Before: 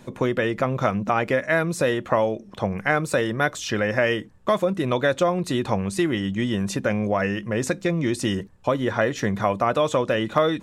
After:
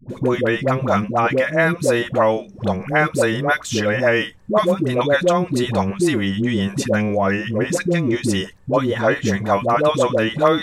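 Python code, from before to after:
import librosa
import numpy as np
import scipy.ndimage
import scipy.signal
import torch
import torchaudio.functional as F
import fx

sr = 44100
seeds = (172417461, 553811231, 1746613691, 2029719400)

y = fx.dispersion(x, sr, late='highs', ms=98.0, hz=570.0)
y = y * librosa.db_to_amplitude(4.5)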